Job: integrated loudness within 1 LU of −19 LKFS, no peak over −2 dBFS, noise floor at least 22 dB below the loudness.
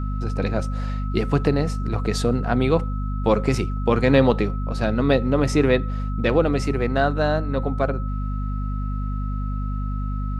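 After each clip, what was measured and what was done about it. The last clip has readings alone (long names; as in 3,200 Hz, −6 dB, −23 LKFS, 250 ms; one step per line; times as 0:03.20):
mains hum 50 Hz; hum harmonics up to 250 Hz; level of the hum −23 dBFS; interfering tone 1,300 Hz; level of the tone −37 dBFS; integrated loudness −22.5 LKFS; sample peak −3.0 dBFS; target loudness −19.0 LKFS
→ mains-hum notches 50/100/150/200/250 Hz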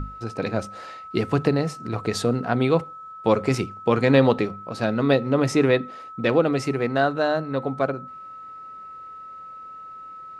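mains hum none found; interfering tone 1,300 Hz; level of the tone −37 dBFS
→ notch filter 1,300 Hz, Q 30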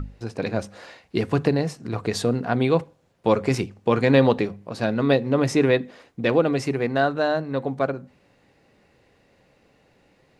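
interfering tone none found; integrated loudness −23.0 LKFS; sample peak −3.5 dBFS; target loudness −19.0 LKFS
→ level +4 dB
brickwall limiter −2 dBFS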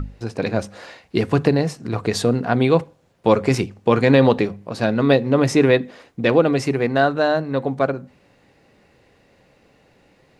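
integrated loudness −19.0 LKFS; sample peak −2.0 dBFS; background noise floor −57 dBFS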